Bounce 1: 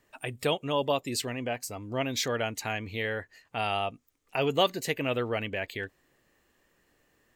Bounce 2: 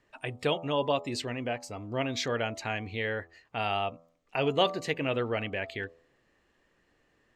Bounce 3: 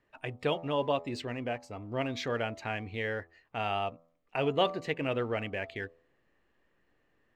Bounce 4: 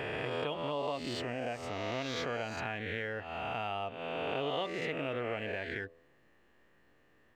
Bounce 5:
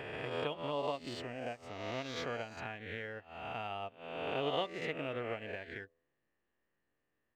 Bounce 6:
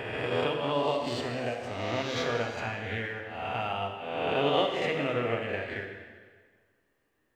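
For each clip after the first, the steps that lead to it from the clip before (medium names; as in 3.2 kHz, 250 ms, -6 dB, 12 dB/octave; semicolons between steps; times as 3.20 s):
Bessel low-pass 4.5 kHz, order 2; de-hum 83.28 Hz, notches 16
tone controls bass 0 dB, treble -9 dB; in parallel at -9.5 dB: hysteresis with a dead band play -38 dBFS; on the sum: trim -4 dB
reverse spectral sustain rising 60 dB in 1.42 s; compression 3:1, threshold -39 dBFS, peak gain reduction 14.5 dB; trim +3 dB
upward expansion 2.5:1, over -45 dBFS; trim +2 dB
plate-style reverb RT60 1.6 s, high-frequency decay 0.9×, DRR 2 dB; trim +7 dB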